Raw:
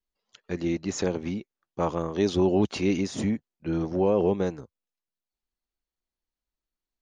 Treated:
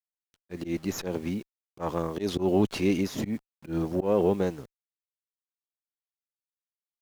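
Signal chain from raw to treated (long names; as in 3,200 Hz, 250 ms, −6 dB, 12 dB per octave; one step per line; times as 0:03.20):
bit reduction 9 bits
volume swells 115 ms
windowed peak hold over 3 samples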